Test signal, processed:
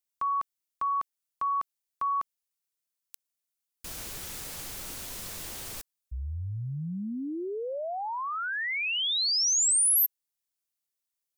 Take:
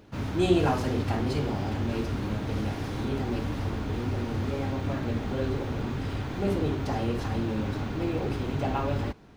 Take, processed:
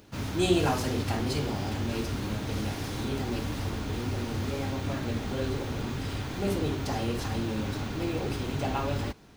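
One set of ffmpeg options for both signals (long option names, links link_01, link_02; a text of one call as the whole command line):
ffmpeg -i in.wav -af "highshelf=frequency=3700:gain=12,volume=-2dB" out.wav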